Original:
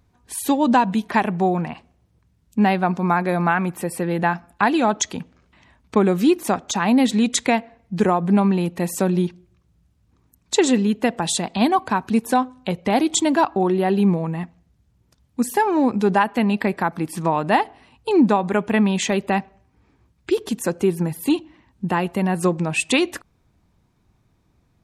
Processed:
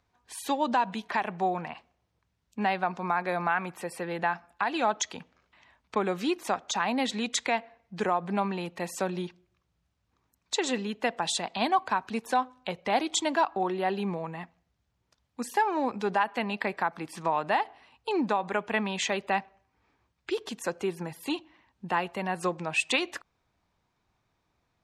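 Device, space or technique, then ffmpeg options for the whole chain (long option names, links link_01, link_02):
DJ mixer with the lows and highs turned down: -filter_complex "[0:a]acrossover=split=500 6900:gain=0.251 1 0.251[link_01][link_02][link_03];[link_01][link_02][link_03]amix=inputs=3:normalize=0,alimiter=limit=-11dB:level=0:latency=1:release=138,volume=-4dB"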